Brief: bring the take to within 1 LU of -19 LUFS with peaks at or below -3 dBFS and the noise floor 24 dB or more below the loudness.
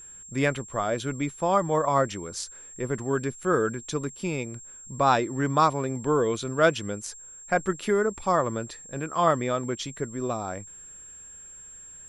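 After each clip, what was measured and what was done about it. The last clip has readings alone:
steady tone 7.5 kHz; tone level -43 dBFS; loudness -27.0 LUFS; peak level -8.0 dBFS; loudness target -19.0 LUFS
-> band-stop 7.5 kHz, Q 30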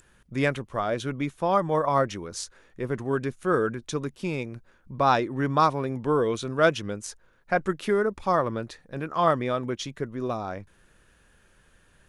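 steady tone not found; loudness -27.0 LUFS; peak level -8.0 dBFS; loudness target -19.0 LUFS
-> trim +8 dB; peak limiter -3 dBFS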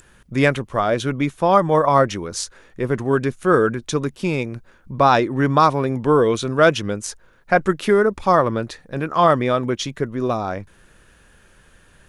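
loudness -19.0 LUFS; peak level -3.0 dBFS; noise floor -53 dBFS

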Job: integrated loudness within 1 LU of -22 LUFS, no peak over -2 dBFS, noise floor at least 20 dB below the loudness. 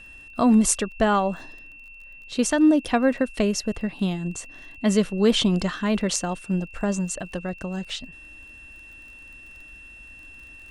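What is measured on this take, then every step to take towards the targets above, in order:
tick rate 24 per s; steady tone 2.7 kHz; tone level -43 dBFS; loudness -23.5 LUFS; peak level -4.5 dBFS; loudness target -22.0 LUFS
-> de-click; band-stop 2.7 kHz, Q 30; trim +1.5 dB

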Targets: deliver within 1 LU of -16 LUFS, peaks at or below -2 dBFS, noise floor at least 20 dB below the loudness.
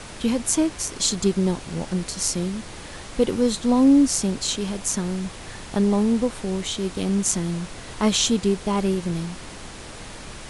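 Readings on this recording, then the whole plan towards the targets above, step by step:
noise floor -39 dBFS; noise floor target -43 dBFS; loudness -22.5 LUFS; peak level -4.0 dBFS; loudness target -16.0 LUFS
-> noise print and reduce 6 dB; trim +6.5 dB; peak limiter -2 dBFS

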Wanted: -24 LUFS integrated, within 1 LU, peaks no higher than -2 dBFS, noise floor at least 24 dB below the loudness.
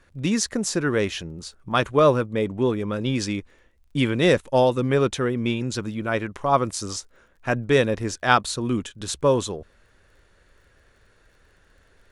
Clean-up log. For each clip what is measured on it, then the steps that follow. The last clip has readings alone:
tick rate 21 per s; loudness -23.0 LUFS; peak level -2.0 dBFS; loudness target -24.0 LUFS
-> de-click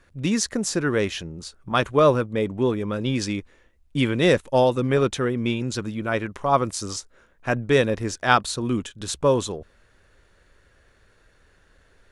tick rate 0 per s; loudness -23.0 LUFS; peak level -2.0 dBFS; loudness target -24.0 LUFS
-> trim -1 dB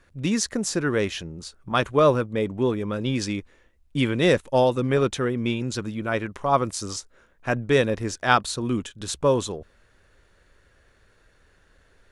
loudness -24.0 LUFS; peak level -3.0 dBFS; noise floor -61 dBFS

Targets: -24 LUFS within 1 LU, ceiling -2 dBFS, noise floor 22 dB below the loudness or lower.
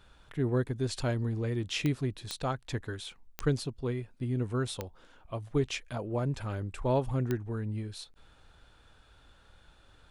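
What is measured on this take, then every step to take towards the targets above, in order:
clicks found 5; loudness -33.5 LUFS; peak level -14.5 dBFS; loudness target -24.0 LUFS
-> de-click; trim +9.5 dB

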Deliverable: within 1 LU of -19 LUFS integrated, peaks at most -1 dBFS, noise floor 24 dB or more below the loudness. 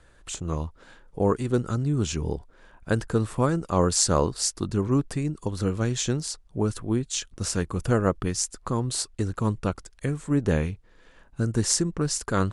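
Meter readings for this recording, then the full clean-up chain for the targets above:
loudness -26.5 LUFS; peak level -4.0 dBFS; loudness target -19.0 LUFS
-> trim +7.5 dB; peak limiter -1 dBFS

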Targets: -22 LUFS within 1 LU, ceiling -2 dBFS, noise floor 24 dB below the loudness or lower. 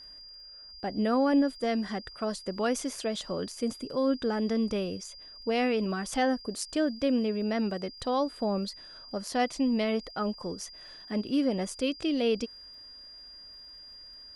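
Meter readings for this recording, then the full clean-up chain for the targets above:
tick rate 26 per s; steady tone 4.8 kHz; tone level -46 dBFS; loudness -30.0 LUFS; peak level -16.0 dBFS; loudness target -22.0 LUFS
-> de-click; band-stop 4.8 kHz, Q 30; trim +8 dB

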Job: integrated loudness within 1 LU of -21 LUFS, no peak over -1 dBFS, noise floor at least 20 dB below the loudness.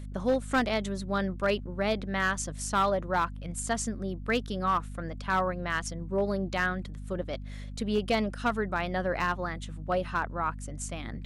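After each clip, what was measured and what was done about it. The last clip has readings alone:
clipped samples 0.4%; clipping level -19.0 dBFS; hum 50 Hz; highest harmonic 250 Hz; hum level -37 dBFS; loudness -30.5 LUFS; peak level -19.0 dBFS; loudness target -21.0 LUFS
-> clip repair -19 dBFS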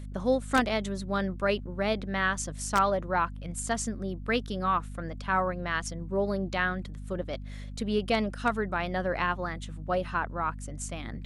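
clipped samples 0.0%; hum 50 Hz; highest harmonic 250 Hz; hum level -37 dBFS
-> de-hum 50 Hz, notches 5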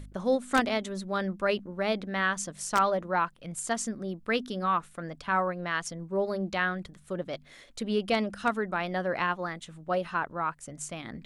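hum not found; loudness -30.5 LUFS; peak level -9.5 dBFS; loudness target -21.0 LUFS
-> trim +9.5 dB; peak limiter -1 dBFS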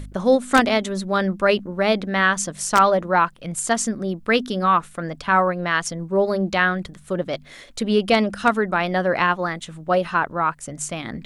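loudness -21.0 LUFS; peak level -1.0 dBFS; noise floor -45 dBFS

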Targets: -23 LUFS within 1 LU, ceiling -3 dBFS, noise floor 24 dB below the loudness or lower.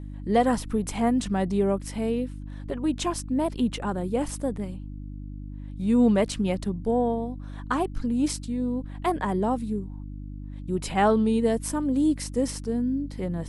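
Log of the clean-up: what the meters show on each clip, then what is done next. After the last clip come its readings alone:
hum 50 Hz; highest harmonic 300 Hz; hum level -35 dBFS; loudness -26.5 LUFS; peak level -9.0 dBFS; loudness target -23.0 LUFS
-> de-hum 50 Hz, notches 6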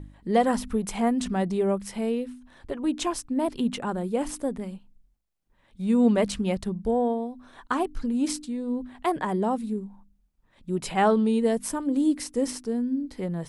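hum not found; loudness -27.0 LUFS; peak level -9.0 dBFS; loudness target -23.0 LUFS
-> trim +4 dB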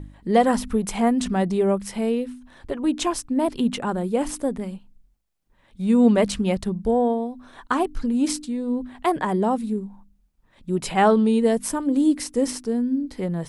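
loudness -23.0 LUFS; peak level -5.0 dBFS; noise floor -62 dBFS

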